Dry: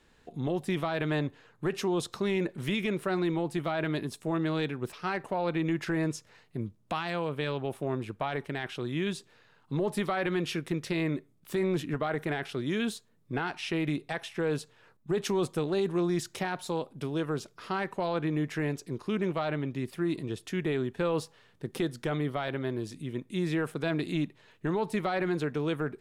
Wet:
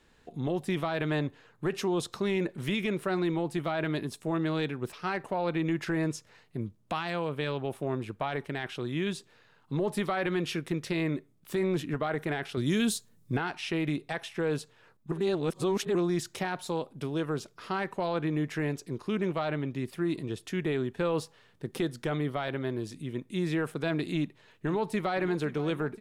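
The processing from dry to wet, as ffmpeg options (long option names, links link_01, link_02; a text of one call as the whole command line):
ffmpeg -i in.wav -filter_complex "[0:a]asettb=1/sr,asplit=3[link_01][link_02][link_03];[link_01]atrim=end=12.574[link_04];[link_02]atrim=start=12.57:end=13.37,asetpts=PTS-STARTPTS,afade=type=in:duration=0.004:curve=qsin,afade=type=out:start_time=0.796:duration=0.004:curve=qsin,bass=frequency=250:gain=7,treble=frequency=4000:gain=11[link_05];[link_03]atrim=start=13.366[link_06];[link_04][link_05]acrossfade=duration=0.004:curve1=hsin:curve2=qsin[link_07];[link_07][link_06]acrossfade=duration=0.004:curve1=qsin:curve2=hsin,asplit=2[link_08][link_09];[link_09]afade=type=in:start_time=24.15:duration=0.01,afade=type=out:start_time=25.19:duration=0.01,aecho=0:1:520|1040|1560|2080|2600|3120|3640|4160|4680|5200:0.158489|0.118867|0.0891502|0.0668627|0.050147|0.0376103|0.0282077|0.0211558|0.0158668|0.0119001[link_10];[link_08][link_10]amix=inputs=2:normalize=0,asplit=3[link_11][link_12][link_13];[link_11]atrim=end=15.122[link_14];[link_12]atrim=start=15.118:end=15.952,asetpts=PTS-STARTPTS,areverse[link_15];[link_13]atrim=start=15.948[link_16];[link_14][link_15]acrossfade=duration=0.004:curve1=hsin:curve2=hsin[link_17];[link_17][link_16]acrossfade=duration=0.004:curve1=hsin:curve2=hsin" out.wav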